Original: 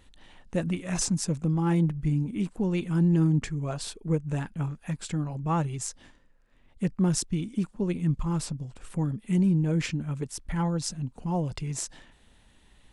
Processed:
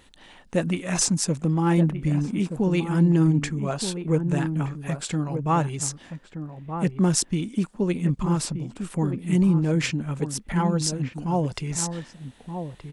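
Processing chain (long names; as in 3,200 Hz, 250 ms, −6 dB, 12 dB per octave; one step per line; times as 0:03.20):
low-shelf EQ 120 Hz −11 dB
slap from a distant wall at 210 metres, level −8 dB
level +6.5 dB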